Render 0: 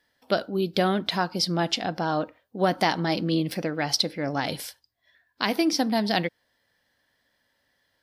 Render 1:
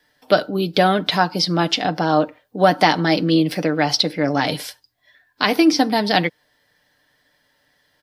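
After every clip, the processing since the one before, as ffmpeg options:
ffmpeg -i in.wav -filter_complex "[0:a]acrossover=split=5400[link_01][link_02];[link_02]acompressor=threshold=-41dB:ratio=4:attack=1:release=60[link_03];[link_01][link_03]amix=inputs=2:normalize=0,aecho=1:1:6.7:0.45,acrossover=split=180|1400|2100[link_04][link_05][link_06][link_07];[link_04]acompressor=threshold=-40dB:ratio=6[link_08];[link_08][link_05][link_06][link_07]amix=inputs=4:normalize=0,volume=7.5dB" out.wav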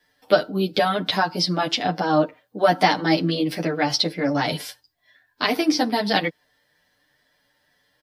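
ffmpeg -i in.wav -filter_complex "[0:a]asplit=2[link_01][link_02];[link_02]adelay=9.3,afreqshift=2.2[link_03];[link_01][link_03]amix=inputs=2:normalize=1" out.wav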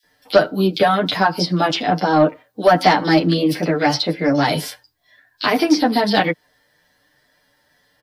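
ffmpeg -i in.wav -filter_complex "[0:a]acrossover=split=2900[link_01][link_02];[link_01]adelay=30[link_03];[link_03][link_02]amix=inputs=2:normalize=0,acrossover=split=130|1300|3600[link_04][link_05][link_06][link_07];[link_07]alimiter=limit=-23dB:level=0:latency=1:release=265[link_08];[link_04][link_05][link_06][link_08]amix=inputs=4:normalize=0,asoftclip=type=tanh:threshold=-8dB,volume=6dB" out.wav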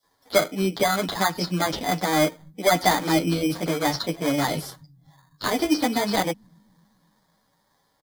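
ffmpeg -i in.wav -filter_complex "[0:a]acrossover=split=110|3500[link_01][link_02][link_03];[link_01]aecho=1:1:255|510|765|1020|1275|1530|1785:0.562|0.309|0.17|0.0936|0.0515|0.0283|0.0156[link_04];[link_02]acrusher=samples=16:mix=1:aa=0.000001[link_05];[link_04][link_05][link_03]amix=inputs=3:normalize=0,volume=-6.5dB" out.wav

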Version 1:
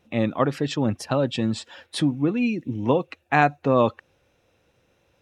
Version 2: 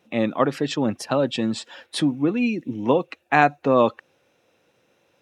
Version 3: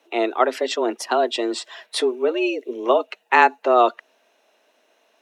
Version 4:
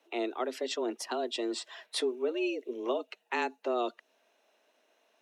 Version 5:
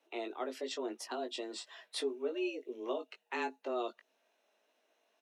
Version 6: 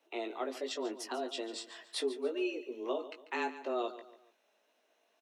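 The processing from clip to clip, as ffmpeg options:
ffmpeg -i in.wav -af "highpass=180,volume=2dB" out.wav
ffmpeg -i in.wav -af "lowshelf=frequency=190:gain=-9,afreqshift=120,volume=3dB" out.wav
ffmpeg -i in.wav -filter_complex "[0:a]acrossover=split=430|3000[link_01][link_02][link_03];[link_02]acompressor=threshold=-32dB:ratio=2.5[link_04];[link_01][link_04][link_03]amix=inputs=3:normalize=0,volume=-8dB" out.wav
ffmpeg -i in.wav -filter_complex "[0:a]asplit=2[link_01][link_02];[link_02]adelay=19,volume=-6dB[link_03];[link_01][link_03]amix=inputs=2:normalize=0,volume=-6.5dB" out.wav
ffmpeg -i in.wav -af "aecho=1:1:143|286|429:0.2|0.0718|0.0259,volume=1.5dB" out.wav

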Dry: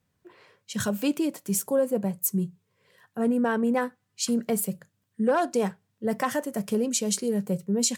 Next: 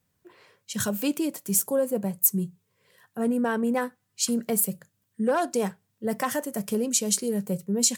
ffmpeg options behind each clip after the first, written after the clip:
ffmpeg -i in.wav -af "crystalizer=i=1:c=0,volume=-1dB" out.wav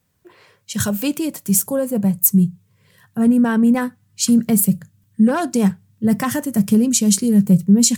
ffmpeg -i in.wav -af "asubboost=boost=9:cutoff=170,volume=6dB" out.wav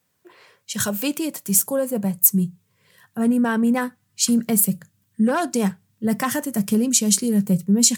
ffmpeg -i in.wav -af "highpass=frequency=340:poles=1" out.wav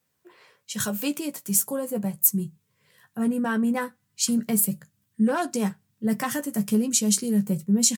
ffmpeg -i in.wav -filter_complex "[0:a]asplit=2[link_01][link_02];[link_02]adelay=14,volume=-8dB[link_03];[link_01][link_03]amix=inputs=2:normalize=0,volume=-5dB" out.wav

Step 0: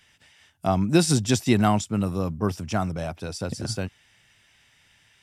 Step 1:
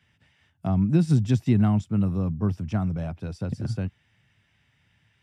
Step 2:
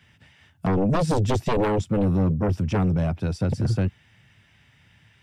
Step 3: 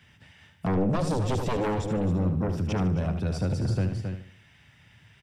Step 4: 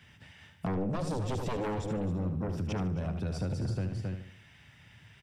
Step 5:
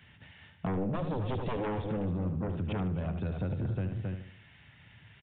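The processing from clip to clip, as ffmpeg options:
ffmpeg -i in.wav -filter_complex "[0:a]highpass=80,bass=frequency=250:gain=12,treble=frequency=4000:gain=-11,acrossover=split=310[link_01][link_02];[link_02]acompressor=threshold=-25dB:ratio=2.5[link_03];[link_01][link_03]amix=inputs=2:normalize=0,volume=-6.5dB" out.wav
ffmpeg -i in.wav -af "aeval=exprs='0.355*sin(PI/2*4.47*val(0)/0.355)':channel_layout=same,volume=-8.5dB" out.wav
ffmpeg -i in.wav -filter_complex "[0:a]asplit=2[link_01][link_02];[link_02]aecho=0:1:268:0.282[link_03];[link_01][link_03]amix=inputs=2:normalize=0,alimiter=limit=-21.5dB:level=0:latency=1:release=53,asplit=2[link_04][link_05];[link_05]aecho=0:1:75|150|225|300:0.335|0.121|0.0434|0.0156[link_06];[link_04][link_06]amix=inputs=2:normalize=0" out.wav
ffmpeg -i in.wav -af "acompressor=threshold=-33dB:ratio=2.5" out.wav
ffmpeg -i in.wav -af "aresample=8000,aresample=44100" out.wav

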